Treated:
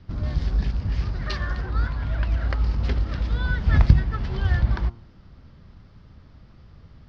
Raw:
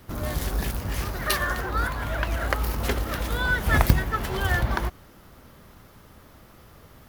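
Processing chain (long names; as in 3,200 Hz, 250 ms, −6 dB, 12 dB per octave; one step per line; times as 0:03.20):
Chebyshev low-pass filter 5,000 Hz, order 4
bass and treble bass +14 dB, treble +5 dB
hum removal 115.7 Hz, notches 12
level −7.5 dB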